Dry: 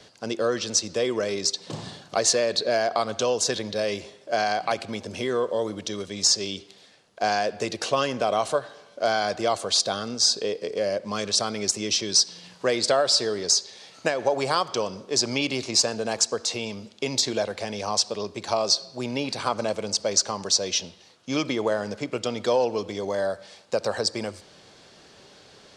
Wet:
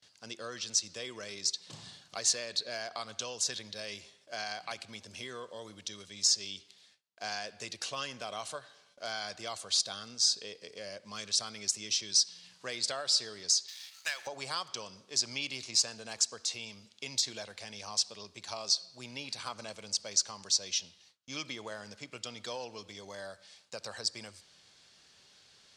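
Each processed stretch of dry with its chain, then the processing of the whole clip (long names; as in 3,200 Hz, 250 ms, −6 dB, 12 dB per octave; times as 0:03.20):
0:13.68–0:14.27: high-pass filter 1,300 Hz + leveller curve on the samples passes 2
whole clip: noise gate with hold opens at −42 dBFS; guitar amp tone stack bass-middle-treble 5-5-5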